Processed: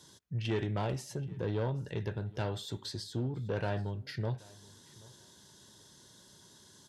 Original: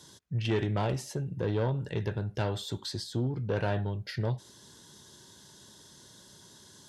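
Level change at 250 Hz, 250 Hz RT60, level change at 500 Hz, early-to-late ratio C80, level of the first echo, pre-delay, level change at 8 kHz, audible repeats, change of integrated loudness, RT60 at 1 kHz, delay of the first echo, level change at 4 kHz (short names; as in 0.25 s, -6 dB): -4.0 dB, none, -4.0 dB, none, -23.0 dB, none, -4.0 dB, 1, -4.0 dB, none, 0.78 s, -4.0 dB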